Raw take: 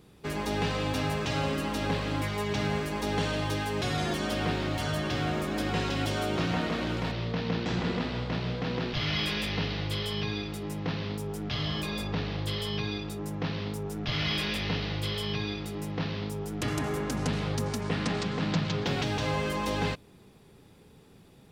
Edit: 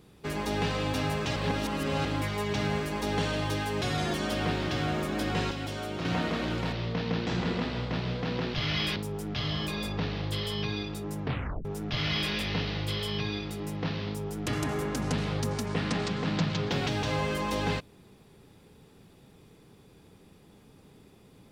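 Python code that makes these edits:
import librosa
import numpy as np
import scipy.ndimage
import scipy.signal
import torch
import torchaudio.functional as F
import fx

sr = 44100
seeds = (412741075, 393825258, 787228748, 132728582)

y = fx.edit(x, sr, fx.reverse_span(start_s=1.36, length_s=0.69),
    fx.cut(start_s=4.69, length_s=0.39),
    fx.clip_gain(start_s=5.9, length_s=0.54, db=-5.5),
    fx.cut(start_s=9.35, length_s=1.76),
    fx.tape_stop(start_s=13.38, length_s=0.42), tone=tone)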